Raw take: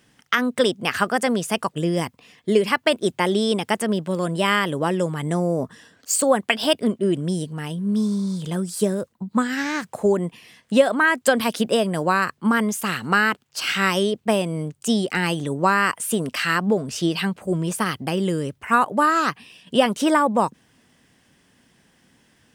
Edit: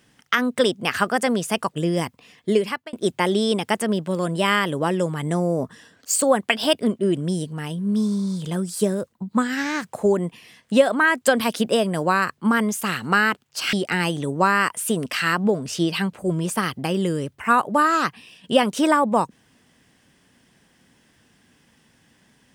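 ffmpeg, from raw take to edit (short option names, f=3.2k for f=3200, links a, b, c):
-filter_complex "[0:a]asplit=3[a][b][c];[a]atrim=end=2.93,asetpts=PTS-STARTPTS,afade=t=out:st=2.5:d=0.43[d];[b]atrim=start=2.93:end=13.732,asetpts=PTS-STARTPTS,afade=t=in:d=0.004:c=hsin[e];[c]atrim=start=14.958[f];[d][e]concat=n=2:v=0:a=1[g];[g][f]acrossfade=d=0.004:c1=hsin:c2=hsin"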